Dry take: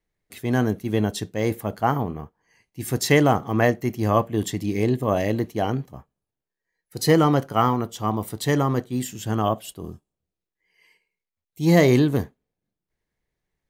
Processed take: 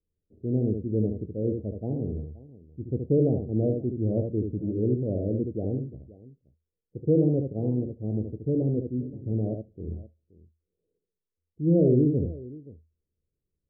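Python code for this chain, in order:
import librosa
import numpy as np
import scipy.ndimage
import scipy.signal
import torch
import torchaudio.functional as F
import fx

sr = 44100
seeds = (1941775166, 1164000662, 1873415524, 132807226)

p1 = scipy.signal.sosfilt(scipy.signal.butter(8, 540.0, 'lowpass', fs=sr, output='sos'), x)
p2 = fx.peak_eq(p1, sr, hz=80.0, db=12.5, octaves=0.23)
p3 = p2 + fx.echo_multitap(p2, sr, ms=(73, 525), db=(-5.5, -19.0), dry=0)
y = F.gain(torch.from_numpy(p3), -4.5).numpy()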